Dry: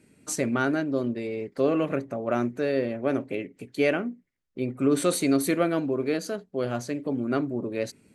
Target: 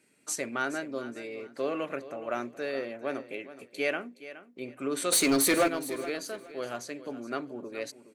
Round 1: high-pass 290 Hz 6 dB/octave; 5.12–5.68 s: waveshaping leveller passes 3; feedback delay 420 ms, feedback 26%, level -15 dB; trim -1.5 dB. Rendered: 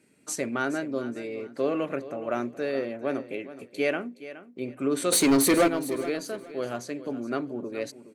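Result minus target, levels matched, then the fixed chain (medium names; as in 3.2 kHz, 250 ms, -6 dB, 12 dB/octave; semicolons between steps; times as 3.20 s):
250 Hz band +2.5 dB
high-pass 820 Hz 6 dB/octave; 5.12–5.68 s: waveshaping leveller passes 3; feedback delay 420 ms, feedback 26%, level -15 dB; trim -1.5 dB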